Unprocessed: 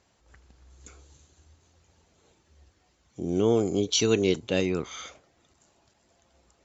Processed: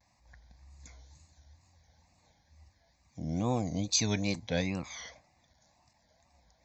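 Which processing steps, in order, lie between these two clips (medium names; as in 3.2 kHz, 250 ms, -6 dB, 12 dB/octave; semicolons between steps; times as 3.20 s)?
static phaser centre 2 kHz, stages 8; wow and flutter 140 cents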